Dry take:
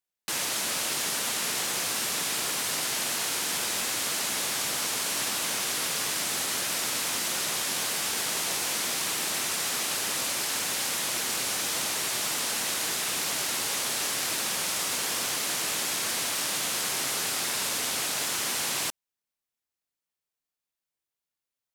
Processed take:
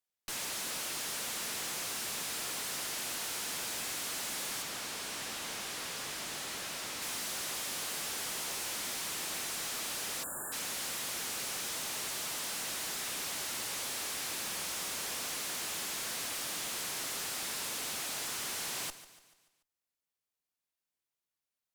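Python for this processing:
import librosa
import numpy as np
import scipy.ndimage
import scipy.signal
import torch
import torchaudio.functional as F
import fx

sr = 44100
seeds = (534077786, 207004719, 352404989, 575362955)

y = fx.tube_stage(x, sr, drive_db=36.0, bias=0.55)
y = fx.high_shelf(y, sr, hz=7300.0, db=-7.0, at=(4.62, 7.02))
y = fx.echo_feedback(y, sr, ms=145, feedback_pct=49, wet_db=-15.0)
y = fx.spec_erase(y, sr, start_s=10.24, length_s=0.28, low_hz=1800.0, high_hz=6900.0)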